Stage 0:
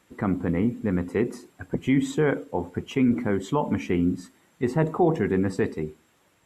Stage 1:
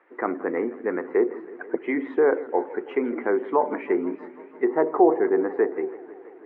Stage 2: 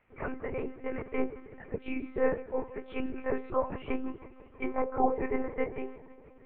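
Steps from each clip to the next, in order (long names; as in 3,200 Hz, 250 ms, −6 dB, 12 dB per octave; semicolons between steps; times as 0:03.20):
Chebyshev band-pass filter 350–2,000 Hz, order 3; treble cut that deepens with the level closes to 1,300 Hz, closed at −24 dBFS; feedback echo with a swinging delay time 163 ms, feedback 75%, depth 157 cents, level −19 dB; level +5.5 dB
partials spread apart or drawn together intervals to 108%; one-pitch LPC vocoder at 8 kHz 260 Hz; level −5.5 dB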